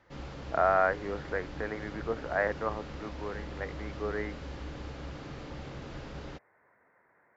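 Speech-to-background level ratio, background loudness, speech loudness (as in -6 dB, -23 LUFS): 10.0 dB, -43.0 LUFS, -33.0 LUFS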